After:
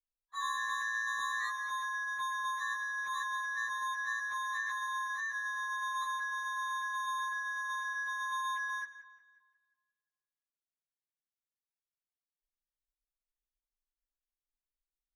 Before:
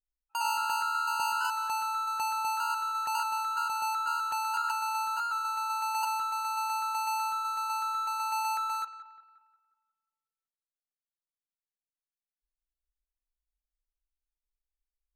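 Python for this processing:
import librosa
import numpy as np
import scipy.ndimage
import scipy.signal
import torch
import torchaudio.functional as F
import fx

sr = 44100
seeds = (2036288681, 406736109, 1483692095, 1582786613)

y = fx.partial_stretch(x, sr, pct=114)
y = fx.air_absorb(y, sr, metres=53.0)
y = y * 10.0 ** (-3.5 / 20.0)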